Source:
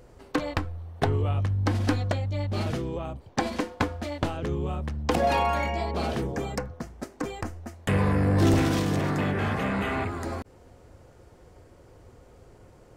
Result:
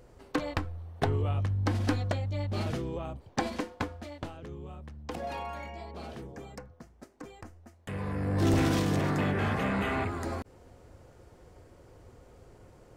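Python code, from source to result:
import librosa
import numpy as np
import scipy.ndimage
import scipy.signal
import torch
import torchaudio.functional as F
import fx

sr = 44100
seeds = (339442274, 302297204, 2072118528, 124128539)

y = fx.gain(x, sr, db=fx.line((3.43, -3.5), (4.47, -13.5), (7.91, -13.5), (8.65, -2.0)))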